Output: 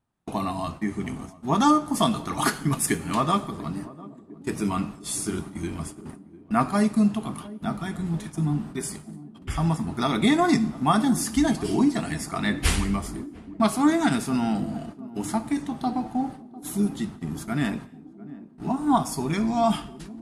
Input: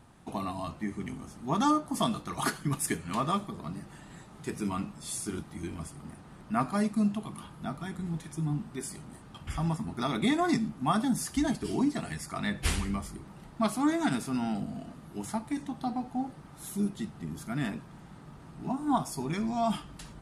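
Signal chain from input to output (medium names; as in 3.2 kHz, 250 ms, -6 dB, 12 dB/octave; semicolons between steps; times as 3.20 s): gate -43 dBFS, range -29 dB; band-passed feedback delay 699 ms, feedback 72%, band-pass 310 Hz, level -16 dB; on a send at -17 dB: reverberation, pre-delay 3 ms; on the sum: trim +6.5 dB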